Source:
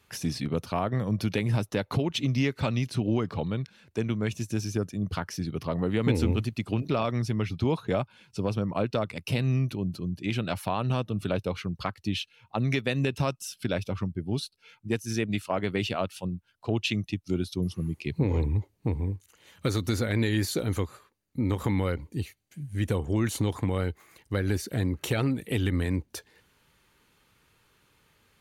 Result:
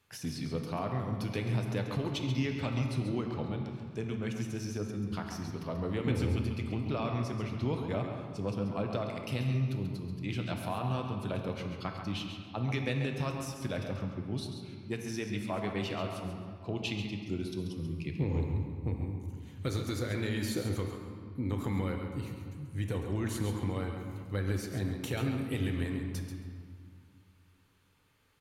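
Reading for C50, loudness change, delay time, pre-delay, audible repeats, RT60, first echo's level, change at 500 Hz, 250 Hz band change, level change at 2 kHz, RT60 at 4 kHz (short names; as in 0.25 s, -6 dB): 3.0 dB, -5.5 dB, 0.136 s, 6 ms, 1, 2.2 s, -8.0 dB, -6.0 dB, -5.5 dB, -6.0 dB, 1.4 s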